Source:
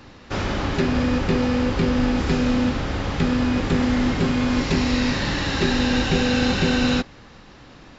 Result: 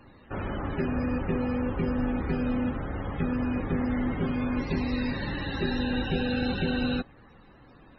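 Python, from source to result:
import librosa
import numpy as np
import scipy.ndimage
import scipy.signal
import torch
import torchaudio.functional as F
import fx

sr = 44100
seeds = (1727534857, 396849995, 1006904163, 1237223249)

y = fx.dmg_crackle(x, sr, seeds[0], per_s=420.0, level_db=-37.0)
y = fx.spec_topn(y, sr, count=64)
y = y * 10.0 ** (-7.5 / 20.0)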